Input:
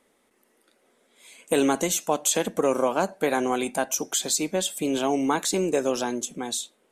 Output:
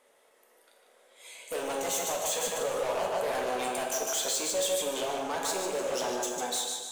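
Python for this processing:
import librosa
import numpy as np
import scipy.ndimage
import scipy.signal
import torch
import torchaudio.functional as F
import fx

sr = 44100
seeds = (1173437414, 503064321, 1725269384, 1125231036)

p1 = fx.echo_feedback(x, sr, ms=150, feedback_pct=40, wet_db=-7.0)
p2 = fx.over_compress(p1, sr, threshold_db=-26.0, ratio=-1.0)
p3 = p1 + F.gain(torch.from_numpy(p2), 2.0).numpy()
p4 = 10.0 ** (-19.0 / 20.0) * np.tanh(p3 / 10.0 ** (-19.0 / 20.0))
p5 = fx.low_shelf_res(p4, sr, hz=380.0, db=-10.5, q=1.5)
p6 = 10.0 ** (-19.0 / 20.0) * (np.abs((p5 / 10.0 ** (-19.0 / 20.0) + 3.0) % 4.0 - 2.0) - 1.0)
p7 = fx.rev_plate(p6, sr, seeds[0], rt60_s=1.1, hf_ratio=0.8, predelay_ms=0, drr_db=2.0)
y = F.gain(torch.from_numpy(p7), -8.5).numpy()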